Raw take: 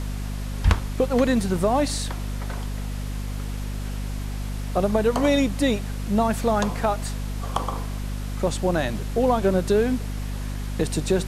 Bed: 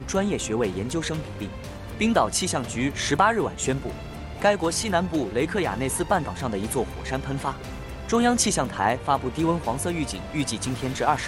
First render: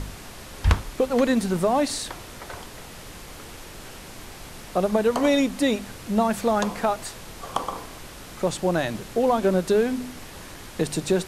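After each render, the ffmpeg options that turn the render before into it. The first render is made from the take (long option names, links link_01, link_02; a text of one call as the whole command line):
ffmpeg -i in.wav -af "bandreject=frequency=50:width_type=h:width=4,bandreject=frequency=100:width_type=h:width=4,bandreject=frequency=150:width_type=h:width=4,bandreject=frequency=200:width_type=h:width=4,bandreject=frequency=250:width_type=h:width=4" out.wav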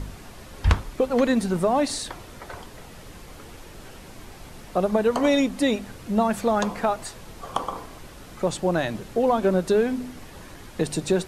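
ffmpeg -i in.wav -af "afftdn=noise_reduction=6:noise_floor=-42" out.wav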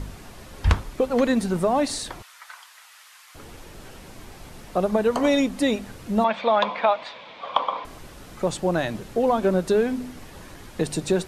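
ffmpeg -i in.wav -filter_complex "[0:a]asettb=1/sr,asplit=3[link_01][link_02][link_03];[link_01]atrim=end=2.224[link_04];[link_02]atrim=start=2.22:end=3.35,asetpts=PTS-STARTPTS,afade=type=in:duration=0.004:curve=qsin,afade=type=out:start_time=1.126:duration=0.004:curve=qsin,highpass=frequency=1100:width=0.5412,highpass=frequency=1100:width=1.3066[link_05];[link_03]atrim=start=3.346[link_06];[link_04][link_05]acrossfade=duration=0.004:curve1=hsin:curve2=qsin[link_07];[link_07][link_06]acrossfade=duration=0.004:curve1=qsin:curve2=hsin,asettb=1/sr,asplit=3[link_08][link_09][link_10];[link_08]atrim=end=6.244[link_11];[link_09]atrim=start=6.24:end=7.85,asetpts=PTS-STARTPTS,afade=type=in:duration=0.004:curve=qsin,afade=type=out:start_time=1.606:duration=0.004:curve=qsin,highpass=320,equalizer=frequency=370:width_type=q:width=4:gain=-10,equalizer=frequency=580:width_type=q:width=4:gain=7,equalizer=frequency=1000:width_type=q:width=4:gain=8,equalizer=frequency=2300:width_type=q:width=4:gain=10,equalizer=frequency=3500:width_type=q:width=4:gain=10,lowpass=frequency=4200:width=0.5412,lowpass=frequency=4200:width=1.3066[link_12];[link_10]atrim=start=7.846[link_13];[link_11][link_12]acrossfade=duration=0.004:curve1=hsin:curve2=qsin[link_14];[link_14][link_13]acrossfade=duration=0.004:curve1=qsin:curve2=hsin" out.wav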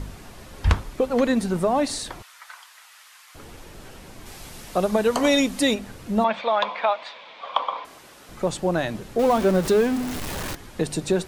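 ffmpeg -i in.wav -filter_complex "[0:a]asplit=3[link_01][link_02][link_03];[link_01]afade=type=out:start_time=4.25:duration=0.02[link_04];[link_02]highshelf=frequency=2400:gain=8.5,afade=type=in:start_time=4.25:duration=0.02,afade=type=out:start_time=5.73:duration=0.02[link_05];[link_03]afade=type=in:start_time=5.73:duration=0.02[link_06];[link_04][link_05][link_06]amix=inputs=3:normalize=0,asettb=1/sr,asplit=3[link_07][link_08][link_09];[link_07]atrim=end=6.414[link_10];[link_08]atrim=start=6.41:end=8.29,asetpts=PTS-STARTPTS,afade=type=in:duration=0.004:curve=qsin,afade=type=out:start_time=1.876:duration=0.004:curve=qsin,highpass=frequency=550:poles=1[link_11];[link_09]atrim=start=8.286[link_12];[link_10][link_11]acrossfade=duration=0.004:curve1=hsin:curve2=qsin[link_13];[link_13][link_12]acrossfade=duration=0.004:curve1=qsin:curve2=hsin,asettb=1/sr,asplit=3[link_14][link_15][link_16];[link_14]atrim=end=9.194[link_17];[link_15]atrim=start=9.19:end=10.55,asetpts=PTS-STARTPTS,afade=type=in:duration=0.004:curve=qsin,afade=type=out:start_time=1.356:duration=0.004:curve=qsin,aeval=exprs='val(0)+0.5*0.0501*sgn(val(0))':channel_layout=same[link_18];[link_16]atrim=start=10.546[link_19];[link_17][link_18]acrossfade=duration=0.004:curve1=hsin:curve2=qsin[link_20];[link_20][link_19]acrossfade=duration=0.004:curve1=qsin:curve2=hsin" out.wav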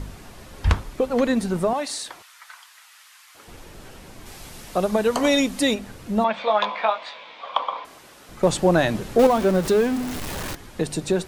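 ffmpeg -i in.wav -filter_complex "[0:a]asettb=1/sr,asplit=3[link_01][link_02][link_03];[link_01]atrim=end=1.734[link_04];[link_02]atrim=start=1.73:end=3.48,asetpts=PTS-STARTPTS,afade=type=in:duration=0.004:curve=qsin,afade=type=out:start_time=1.746:duration=0.004:curve=qsin,highpass=frequency=840:poles=1[link_05];[link_03]atrim=start=3.476[link_06];[link_04][link_05]acrossfade=duration=0.004:curve1=hsin:curve2=qsin[link_07];[link_07][link_06]acrossfade=duration=0.004:curve1=qsin:curve2=hsin,asettb=1/sr,asplit=3[link_08][link_09][link_10];[link_08]atrim=end=6.394[link_11];[link_09]atrim=start=6.39:end=7.42,asetpts=PTS-STARTPTS,afade=type=in:duration=0.004:curve=qsin,afade=type=out:start_time=1.026:duration=0.004:curve=qsin,asplit=2[link_12][link_13];[link_13]adelay=19,volume=-4dB[link_14];[link_12][link_14]amix=inputs=2:normalize=0,atrim=end_sample=45423[link_15];[link_10]atrim=start=7.416[link_16];[link_11][link_15]acrossfade=duration=0.004:curve1=hsin:curve2=qsin[link_17];[link_17][link_16]acrossfade=duration=0.004:curve1=qsin:curve2=hsin,asettb=1/sr,asplit=3[link_18][link_19][link_20];[link_18]atrim=end=8.434[link_21];[link_19]atrim=start=8.43:end=9.27,asetpts=PTS-STARTPTS,afade=type=in:duration=0.004:curve=qsin,afade=type=out:start_time=0.836:duration=0.004:curve=qsin,acontrast=49[link_22];[link_20]atrim=start=9.266[link_23];[link_21][link_22]acrossfade=duration=0.004:curve1=hsin:curve2=qsin[link_24];[link_24][link_23]acrossfade=duration=0.004:curve1=qsin:curve2=hsin" out.wav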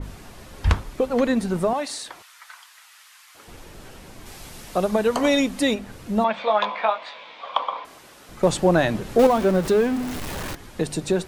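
ffmpeg -i in.wav -af "adynamicequalizer=threshold=0.0141:dfrequency=3400:dqfactor=0.7:tfrequency=3400:tqfactor=0.7:attack=5:release=100:ratio=0.375:range=2.5:mode=cutabove:tftype=highshelf" out.wav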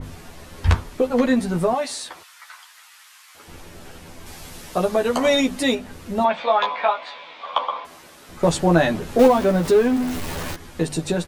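ffmpeg -i in.wav -filter_complex "[0:a]asplit=2[link_01][link_02];[link_02]adelay=12,volume=-3dB[link_03];[link_01][link_03]amix=inputs=2:normalize=0" out.wav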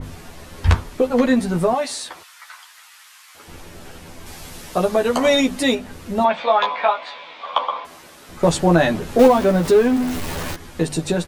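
ffmpeg -i in.wav -af "volume=2dB,alimiter=limit=-2dB:level=0:latency=1" out.wav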